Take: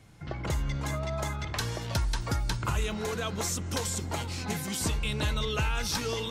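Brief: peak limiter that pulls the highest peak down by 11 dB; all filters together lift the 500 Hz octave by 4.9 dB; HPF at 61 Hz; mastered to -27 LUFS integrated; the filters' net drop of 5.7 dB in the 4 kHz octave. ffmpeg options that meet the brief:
-af "highpass=61,equalizer=f=500:t=o:g=6,equalizer=f=4000:t=o:g=-7.5,volume=2.66,alimiter=limit=0.126:level=0:latency=1"

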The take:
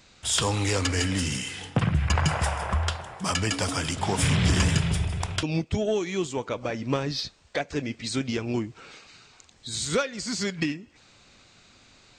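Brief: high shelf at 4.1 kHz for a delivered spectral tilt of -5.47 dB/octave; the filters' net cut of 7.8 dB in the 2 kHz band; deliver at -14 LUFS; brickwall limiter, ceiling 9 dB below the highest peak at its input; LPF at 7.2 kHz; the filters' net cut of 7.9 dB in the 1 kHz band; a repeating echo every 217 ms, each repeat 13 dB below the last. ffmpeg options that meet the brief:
-af "lowpass=7200,equalizer=f=1000:t=o:g=-8.5,equalizer=f=2000:t=o:g=-6,highshelf=f=4100:g=-6,alimiter=limit=0.075:level=0:latency=1,aecho=1:1:217|434|651:0.224|0.0493|0.0108,volume=7.94"

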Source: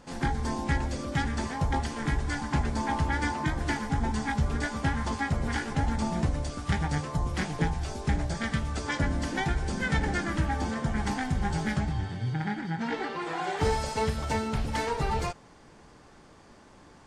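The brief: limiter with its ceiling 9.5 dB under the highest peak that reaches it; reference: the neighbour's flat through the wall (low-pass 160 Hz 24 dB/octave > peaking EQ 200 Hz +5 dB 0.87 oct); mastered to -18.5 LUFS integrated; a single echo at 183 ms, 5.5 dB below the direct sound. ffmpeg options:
-af "alimiter=level_in=1.41:limit=0.0631:level=0:latency=1,volume=0.708,lowpass=f=160:w=0.5412,lowpass=f=160:w=1.3066,equalizer=f=200:t=o:w=0.87:g=5,aecho=1:1:183:0.531,volume=10"

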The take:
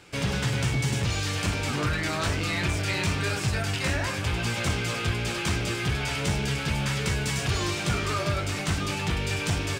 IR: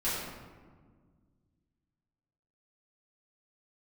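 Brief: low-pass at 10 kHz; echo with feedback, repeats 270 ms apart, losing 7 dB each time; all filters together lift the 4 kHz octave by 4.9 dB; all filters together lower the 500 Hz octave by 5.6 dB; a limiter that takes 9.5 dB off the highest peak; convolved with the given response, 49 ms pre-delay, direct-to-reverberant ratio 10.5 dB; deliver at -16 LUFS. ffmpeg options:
-filter_complex "[0:a]lowpass=10000,equalizer=f=500:t=o:g=-7.5,equalizer=f=4000:t=o:g=6.5,alimiter=limit=0.075:level=0:latency=1,aecho=1:1:270|540|810|1080|1350:0.447|0.201|0.0905|0.0407|0.0183,asplit=2[s0][s1];[1:a]atrim=start_sample=2205,adelay=49[s2];[s1][s2]afir=irnorm=-1:irlink=0,volume=0.119[s3];[s0][s3]amix=inputs=2:normalize=0,volume=4.47"

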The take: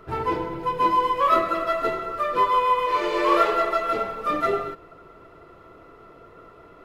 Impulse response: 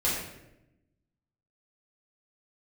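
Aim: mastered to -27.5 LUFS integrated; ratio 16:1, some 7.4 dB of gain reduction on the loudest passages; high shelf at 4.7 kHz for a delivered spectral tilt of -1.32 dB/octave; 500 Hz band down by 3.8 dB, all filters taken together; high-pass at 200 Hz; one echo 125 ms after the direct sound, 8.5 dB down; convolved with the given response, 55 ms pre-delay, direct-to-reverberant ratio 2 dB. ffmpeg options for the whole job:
-filter_complex "[0:a]highpass=200,equalizer=f=500:t=o:g=-5,highshelf=f=4700:g=8.5,acompressor=threshold=0.0708:ratio=16,aecho=1:1:125:0.376,asplit=2[s0][s1];[1:a]atrim=start_sample=2205,adelay=55[s2];[s1][s2]afir=irnorm=-1:irlink=0,volume=0.251[s3];[s0][s3]amix=inputs=2:normalize=0,volume=0.794"

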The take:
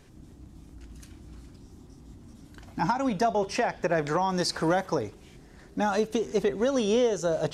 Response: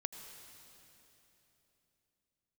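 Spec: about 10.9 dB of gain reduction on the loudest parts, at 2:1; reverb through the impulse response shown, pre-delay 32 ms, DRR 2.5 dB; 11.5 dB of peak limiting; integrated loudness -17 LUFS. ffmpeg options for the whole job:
-filter_complex "[0:a]acompressor=threshold=0.00891:ratio=2,alimiter=level_in=3.55:limit=0.0631:level=0:latency=1,volume=0.282,asplit=2[s0][s1];[1:a]atrim=start_sample=2205,adelay=32[s2];[s1][s2]afir=irnorm=-1:irlink=0,volume=0.891[s3];[s0][s3]amix=inputs=2:normalize=0,volume=20"

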